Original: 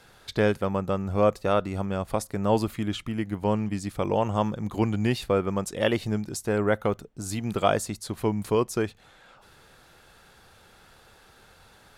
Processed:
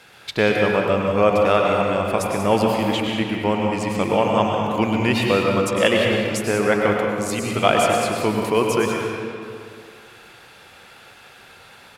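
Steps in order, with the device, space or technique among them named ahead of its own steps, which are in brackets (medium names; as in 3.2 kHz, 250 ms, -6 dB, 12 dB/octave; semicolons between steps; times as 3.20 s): PA in a hall (high-pass 170 Hz 6 dB/octave; peaking EQ 2.5 kHz +7.5 dB 0.8 oct; delay 188 ms -11 dB; reverberation RT60 2.3 s, pre-delay 94 ms, DRR 0 dB); trim +4.5 dB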